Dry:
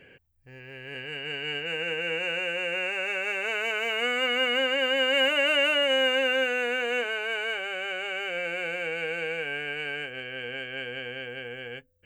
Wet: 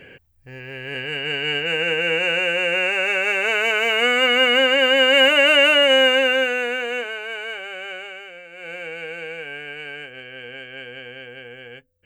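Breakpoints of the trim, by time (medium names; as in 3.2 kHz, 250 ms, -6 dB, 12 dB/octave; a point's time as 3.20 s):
5.98 s +9 dB
7.22 s 0 dB
7.95 s 0 dB
8.49 s -11.5 dB
8.71 s -1 dB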